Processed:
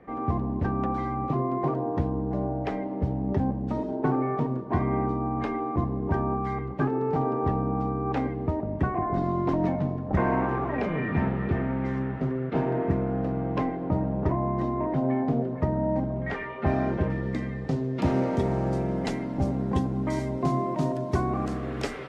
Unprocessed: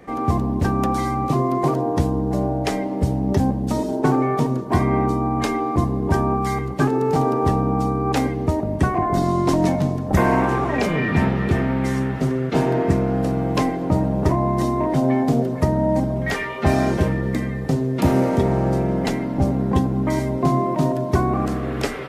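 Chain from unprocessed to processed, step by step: LPF 2100 Hz 12 dB/oct, from 17.1 s 4900 Hz, from 18.37 s 8600 Hz; gain -7 dB

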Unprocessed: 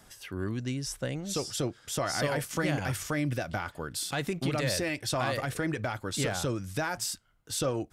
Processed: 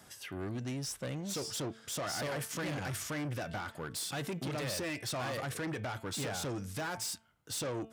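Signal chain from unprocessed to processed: de-hum 223.1 Hz, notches 16; soft clip -33.5 dBFS, distortion -8 dB; HPF 86 Hz

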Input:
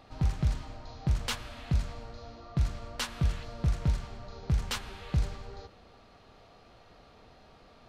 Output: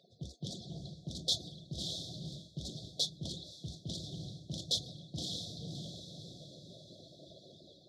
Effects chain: median-filter separation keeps percussive; brick-wall FIR band-stop 750–3300 Hz; diffused feedback echo 0.597 s, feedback 41%, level -10.5 dB; AGC gain up to 7 dB; HPF 59 Hz 24 dB/oct; high shelf 4000 Hz -10.5 dB; reverse; compressor 12:1, threshold -36 dBFS, peak gain reduction 18.5 dB; reverse; weighting filter D; on a send at -14.5 dB: reverb, pre-delay 3 ms; on the sum: Doppler distortion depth 0.15 ms

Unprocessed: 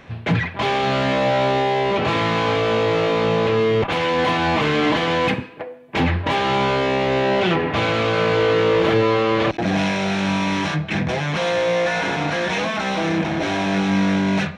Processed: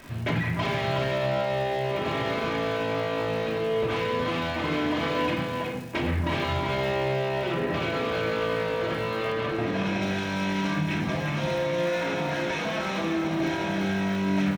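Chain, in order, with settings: compressor 3:1, threshold -22 dBFS, peak gain reduction 7 dB; crackle 190/s -32 dBFS; shoebox room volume 900 m³, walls furnished, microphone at 2.8 m; limiter -12 dBFS, peak gain reduction 5 dB; echo 0.367 s -5.5 dB; vocal rider 2 s; 9.32–10.02 high shelf 7200 Hz -9 dB; gain -7.5 dB

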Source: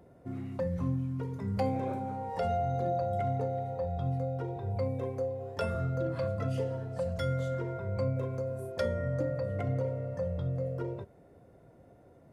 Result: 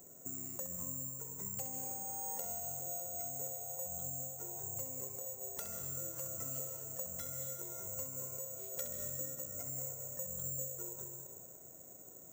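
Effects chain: HPF 160 Hz 6 dB/oct; compressor, threshold -44 dBFS, peak gain reduction 16 dB; flutter echo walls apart 11.6 m, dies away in 0.45 s; on a send at -5 dB: reverb RT60 1.8 s, pre-delay 0.115 s; on the sum: careless resampling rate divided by 6×, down none, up zero stuff; gain -5 dB

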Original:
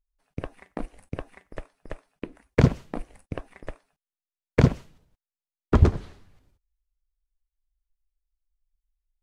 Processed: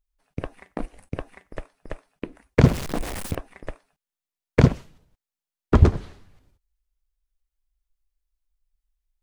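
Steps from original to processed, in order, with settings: 2.64–3.35 zero-crossing step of -28.5 dBFS; gain +2.5 dB

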